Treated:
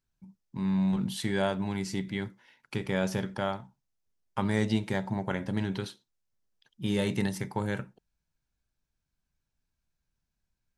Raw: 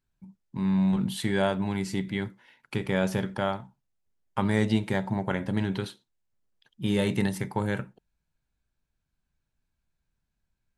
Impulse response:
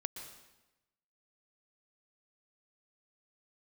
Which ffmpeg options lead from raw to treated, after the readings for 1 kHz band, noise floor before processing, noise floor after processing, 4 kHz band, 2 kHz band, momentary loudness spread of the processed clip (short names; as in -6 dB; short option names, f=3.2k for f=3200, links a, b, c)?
-3.0 dB, -82 dBFS, -84 dBFS, -2.0 dB, -3.0 dB, 10 LU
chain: -af "equalizer=f=5.6k:w=2:g=5.5,volume=-3dB"